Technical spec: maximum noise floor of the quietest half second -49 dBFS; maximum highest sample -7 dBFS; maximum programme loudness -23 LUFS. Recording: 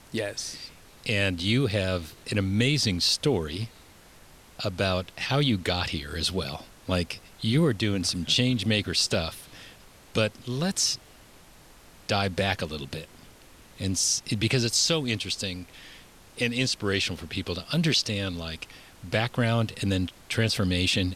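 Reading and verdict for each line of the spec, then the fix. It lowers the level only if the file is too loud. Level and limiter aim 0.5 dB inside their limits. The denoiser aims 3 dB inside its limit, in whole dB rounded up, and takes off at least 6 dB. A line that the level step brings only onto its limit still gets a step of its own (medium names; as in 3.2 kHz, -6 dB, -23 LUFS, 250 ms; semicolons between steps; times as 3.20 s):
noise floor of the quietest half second -52 dBFS: pass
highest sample -11.0 dBFS: pass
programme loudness -26.5 LUFS: pass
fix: none needed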